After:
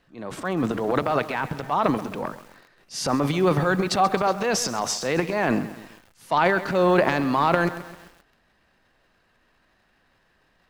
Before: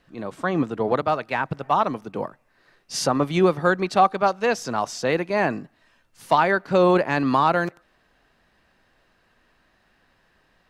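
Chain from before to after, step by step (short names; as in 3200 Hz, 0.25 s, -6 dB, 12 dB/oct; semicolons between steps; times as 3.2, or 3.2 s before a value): transient shaper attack -4 dB, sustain +12 dB; lo-fi delay 0.132 s, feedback 55%, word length 6-bit, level -14 dB; gain -2 dB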